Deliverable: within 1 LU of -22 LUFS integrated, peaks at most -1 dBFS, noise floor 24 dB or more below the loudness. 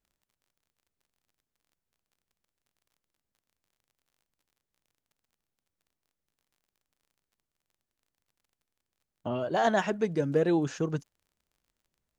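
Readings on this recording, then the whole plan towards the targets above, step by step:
tick rate 25 per s; loudness -28.5 LUFS; peak level -13.0 dBFS; loudness target -22.0 LUFS
-> de-click; trim +6.5 dB

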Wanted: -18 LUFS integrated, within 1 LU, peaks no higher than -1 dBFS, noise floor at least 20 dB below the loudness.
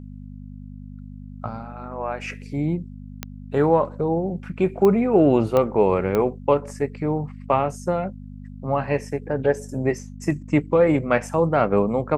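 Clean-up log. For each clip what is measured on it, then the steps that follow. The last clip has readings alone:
clicks found 4; hum 50 Hz; highest harmonic 250 Hz; hum level -35 dBFS; loudness -22.0 LUFS; peak level -4.5 dBFS; loudness target -18.0 LUFS
-> de-click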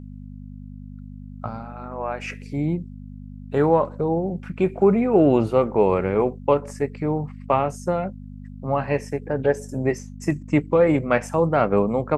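clicks found 0; hum 50 Hz; highest harmonic 250 Hz; hum level -35 dBFS
-> de-hum 50 Hz, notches 5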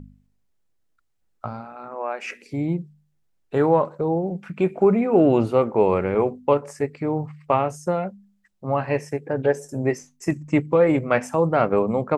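hum not found; loudness -22.5 LUFS; peak level -4.5 dBFS; loudness target -18.0 LUFS
-> trim +4.5 dB; peak limiter -1 dBFS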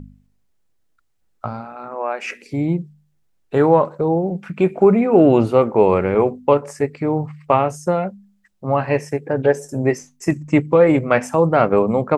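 loudness -18.0 LUFS; peak level -1.0 dBFS; noise floor -63 dBFS

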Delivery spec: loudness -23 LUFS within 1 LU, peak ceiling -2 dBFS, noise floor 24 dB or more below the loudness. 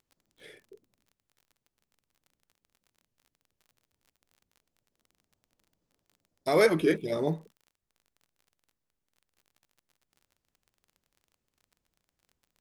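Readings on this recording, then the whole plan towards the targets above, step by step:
tick rate 34 per s; loudness -27.0 LUFS; peak level -10.0 dBFS; loudness target -23.0 LUFS
-> de-click; trim +4 dB

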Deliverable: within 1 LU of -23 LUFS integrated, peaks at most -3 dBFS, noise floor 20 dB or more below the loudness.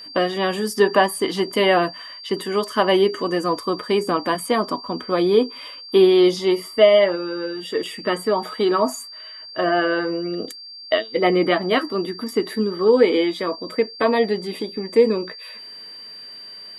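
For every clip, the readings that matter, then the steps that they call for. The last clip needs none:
steady tone 4.7 kHz; tone level -36 dBFS; loudness -20.0 LUFS; peak level -2.5 dBFS; loudness target -23.0 LUFS
-> band-stop 4.7 kHz, Q 30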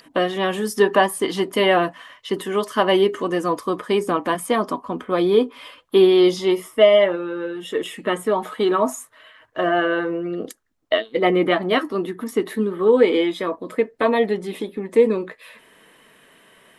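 steady tone not found; loudness -20.0 LUFS; peak level -2.5 dBFS; loudness target -23.0 LUFS
-> trim -3 dB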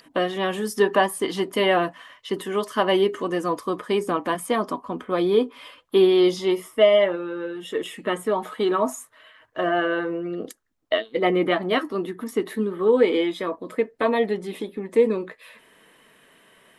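loudness -23.0 LUFS; peak level -5.5 dBFS; noise floor -57 dBFS

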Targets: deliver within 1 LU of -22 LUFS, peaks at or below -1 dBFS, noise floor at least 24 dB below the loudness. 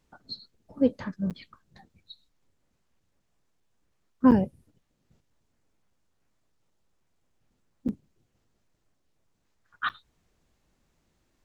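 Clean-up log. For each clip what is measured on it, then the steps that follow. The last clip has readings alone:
dropouts 4; longest dropout 7.9 ms; loudness -27.5 LUFS; peak level -8.0 dBFS; loudness target -22.0 LUFS
-> interpolate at 1.30/4.31/7.88/9.89 s, 7.9 ms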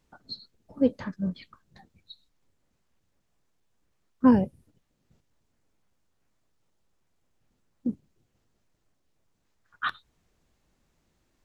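dropouts 0; loudness -27.0 LUFS; peak level -8.0 dBFS; loudness target -22.0 LUFS
-> trim +5 dB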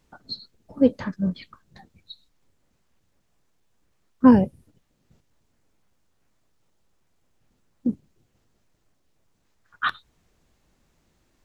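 loudness -22.5 LUFS; peak level -3.0 dBFS; noise floor -69 dBFS

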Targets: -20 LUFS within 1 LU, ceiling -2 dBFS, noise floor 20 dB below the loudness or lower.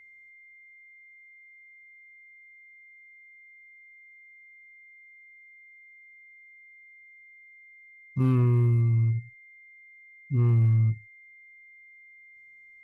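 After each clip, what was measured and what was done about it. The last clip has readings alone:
clipped samples 0.3%; clipping level -17.0 dBFS; steady tone 2.1 kHz; tone level -50 dBFS; loudness -24.5 LUFS; peak level -17.0 dBFS; loudness target -20.0 LUFS
-> clip repair -17 dBFS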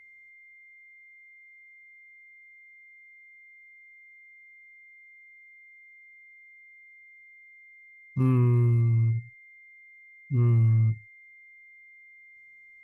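clipped samples 0.0%; steady tone 2.1 kHz; tone level -50 dBFS
-> band-stop 2.1 kHz, Q 30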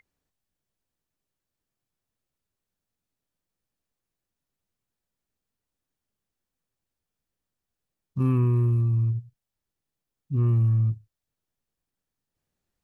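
steady tone not found; loudness -24.0 LUFS; peak level -15.0 dBFS; loudness target -20.0 LUFS
-> trim +4 dB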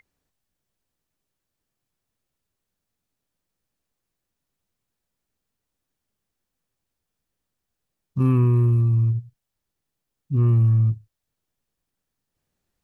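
loudness -20.0 LUFS; peak level -11.0 dBFS; noise floor -83 dBFS

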